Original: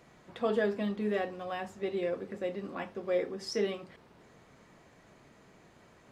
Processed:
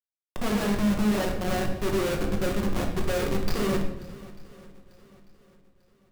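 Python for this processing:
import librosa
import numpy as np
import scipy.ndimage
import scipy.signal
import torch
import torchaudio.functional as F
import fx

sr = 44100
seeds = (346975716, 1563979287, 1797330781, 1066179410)

y = fx.freq_compress(x, sr, knee_hz=4000.0, ratio=1.5)
y = fx.low_shelf(y, sr, hz=91.0, db=11.0)
y = fx.schmitt(y, sr, flips_db=-35.5)
y = fx.echo_swing(y, sr, ms=894, ratio=1.5, feedback_pct=33, wet_db=-20)
y = fx.room_shoebox(y, sr, seeds[0], volume_m3=310.0, walls='mixed', distance_m=0.99)
y = F.gain(torch.from_numpy(y), 6.0).numpy()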